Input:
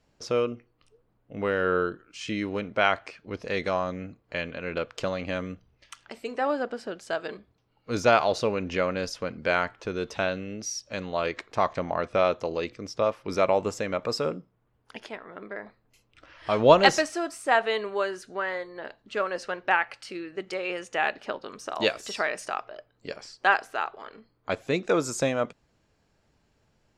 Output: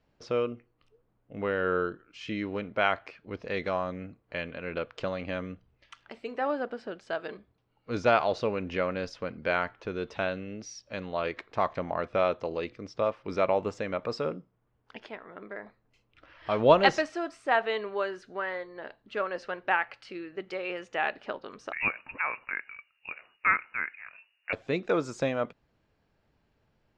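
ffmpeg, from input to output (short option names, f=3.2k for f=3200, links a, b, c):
-filter_complex "[0:a]asettb=1/sr,asplit=3[a][b][c];[a]atrim=end=21.724[d];[b]atrim=start=21.72:end=24.53,asetpts=PTS-STARTPTS,afade=t=in:d=0.004:c=qsin,afade=t=out:st=2.806:d=0.004:c=qsin,lowpass=f=2.5k:t=q:w=0.5098,lowpass=f=2.5k:t=q:w=0.6013,lowpass=f=2.5k:t=q:w=0.9,lowpass=f=2.5k:t=q:w=2.563,afreqshift=-2900[e];[c]atrim=start=24.526[f];[d][e]acrossfade=d=0.004:c1=hsin:c2=qsin[g];[g][f]acrossfade=d=0.004:c1=qsin:c2=hsin,lowpass=3.8k,volume=-3dB"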